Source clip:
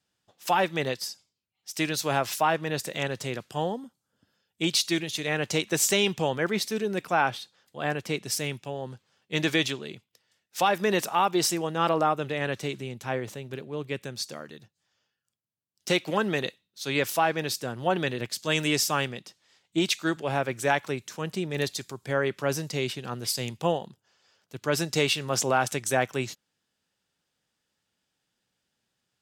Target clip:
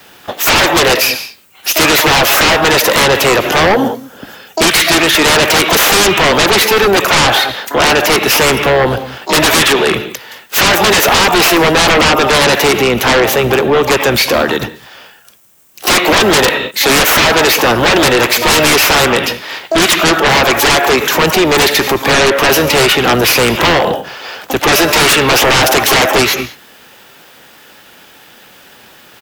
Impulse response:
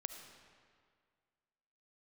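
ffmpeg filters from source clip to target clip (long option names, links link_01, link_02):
-filter_complex "[0:a]asplit=2[link_01][link_02];[1:a]atrim=start_sample=2205,afade=type=out:start_time=0.27:duration=0.01,atrim=end_sample=12348[link_03];[link_02][link_03]afir=irnorm=-1:irlink=0,volume=-8dB[link_04];[link_01][link_04]amix=inputs=2:normalize=0,aexciter=amount=13.8:drive=3.5:freq=11000,asoftclip=type=tanh:threshold=-17dB,asplit=4[link_05][link_06][link_07][link_08];[link_06]asetrate=22050,aresample=44100,atempo=2,volume=-8dB[link_09];[link_07]asetrate=37084,aresample=44100,atempo=1.18921,volume=-16dB[link_10];[link_08]asetrate=88200,aresample=44100,atempo=0.5,volume=-17dB[link_11];[link_05][link_09][link_10][link_11]amix=inputs=4:normalize=0,acrossover=split=260 4100:gain=0.251 1 0.141[link_12][link_13][link_14];[link_12][link_13][link_14]amix=inputs=3:normalize=0,acrossover=split=450|2900[link_15][link_16][link_17];[link_15]acompressor=threshold=-44dB:ratio=4[link_18];[link_16]acompressor=threshold=-28dB:ratio=4[link_19];[link_17]acompressor=threshold=-41dB:ratio=4[link_20];[link_18][link_19][link_20]amix=inputs=3:normalize=0,aeval=exprs='0.15*sin(PI/2*6.31*val(0)/0.15)':channel_layout=same,alimiter=level_in=23.5dB:limit=-1dB:release=50:level=0:latency=1,volume=-4.5dB"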